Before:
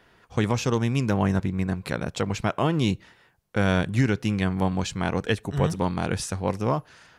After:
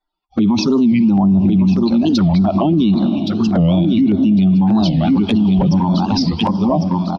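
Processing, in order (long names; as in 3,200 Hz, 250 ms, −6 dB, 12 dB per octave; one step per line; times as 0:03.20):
spectral dynamics exaggerated over time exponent 2
Butterworth low-pass 5,300 Hz 72 dB per octave
low-shelf EQ 83 Hz −8.5 dB
phaser with its sweep stopped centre 470 Hz, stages 6
dynamic equaliser 200 Hz, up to +7 dB, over −46 dBFS, Q 0.78
flanger swept by the level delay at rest 6.6 ms, full sweep at −26.5 dBFS
repeating echo 1,101 ms, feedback 30%, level −9 dB
on a send at −17.5 dB: convolution reverb RT60 3.6 s, pre-delay 33 ms
on the sum: auto-filter notch saw down 1.7 Hz 480–3,100 Hz
boost into a limiter +34 dB
wow of a warped record 45 rpm, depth 250 cents
level −6.5 dB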